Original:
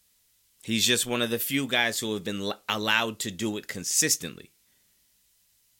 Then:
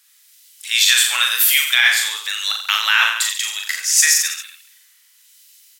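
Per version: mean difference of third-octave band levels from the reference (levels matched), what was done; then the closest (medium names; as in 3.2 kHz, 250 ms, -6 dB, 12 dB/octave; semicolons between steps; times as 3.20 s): 16.0 dB: high-pass 1.3 kHz 24 dB/octave; harmonic tremolo 1 Hz, depth 50%, crossover 2.1 kHz; reverse bouncing-ball echo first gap 40 ms, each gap 1.15×, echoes 5; loudness maximiser +16 dB; trim -1 dB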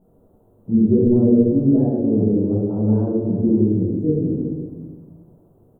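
22.5 dB: zero-crossing glitches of -18 dBFS; inverse Chebyshev low-pass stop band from 2 kHz, stop band 70 dB; on a send: delay 347 ms -14 dB; on the sum: simulated room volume 570 m³, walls mixed, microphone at 7.6 m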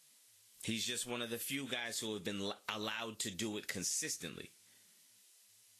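5.5 dB: bass shelf 360 Hz -3.5 dB; peak limiter -14 dBFS, peak gain reduction 7 dB; compression 16:1, threshold -37 dBFS, peak gain reduction 17 dB; trim +1 dB; Vorbis 32 kbps 32 kHz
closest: third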